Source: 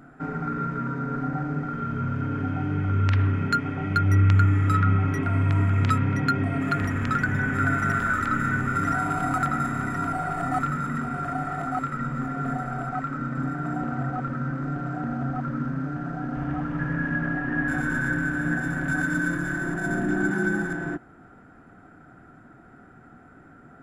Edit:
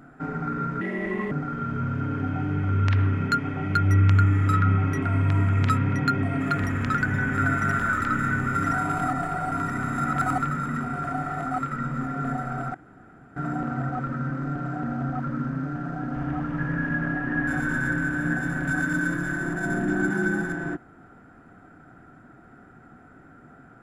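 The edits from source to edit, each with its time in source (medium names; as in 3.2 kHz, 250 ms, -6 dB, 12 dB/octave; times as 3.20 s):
0.81–1.52 s: speed 141%
9.29–10.56 s: reverse
12.95–13.57 s: room tone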